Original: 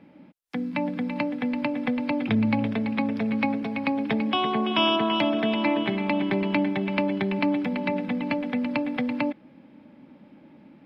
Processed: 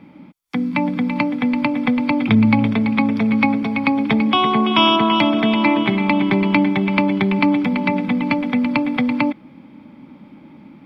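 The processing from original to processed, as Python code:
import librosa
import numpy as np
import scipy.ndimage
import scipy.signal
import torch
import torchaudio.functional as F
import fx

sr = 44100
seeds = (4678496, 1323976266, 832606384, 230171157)

y = x + 0.4 * np.pad(x, (int(0.9 * sr / 1000.0), 0))[:len(x)]
y = y * 10.0 ** (7.5 / 20.0)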